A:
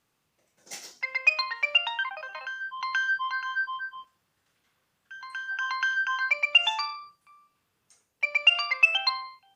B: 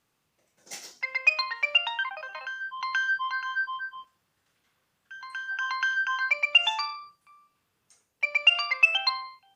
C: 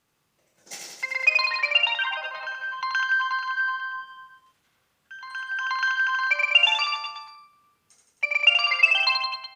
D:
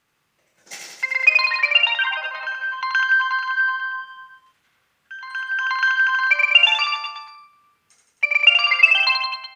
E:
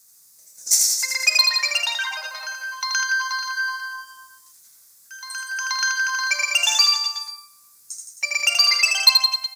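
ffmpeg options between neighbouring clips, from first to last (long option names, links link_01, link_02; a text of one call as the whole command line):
ffmpeg -i in.wav -af anull out.wav
ffmpeg -i in.wav -af "aecho=1:1:80|168|264.8|371.3|488.4:0.631|0.398|0.251|0.158|0.1,volume=1.5dB" out.wav
ffmpeg -i in.wav -af "equalizer=frequency=1900:width=0.76:gain=6.5" out.wav
ffmpeg -i in.wav -af "aexciter=amount=14.6:drive=9:freq=4700,volume=-5dB" out.wav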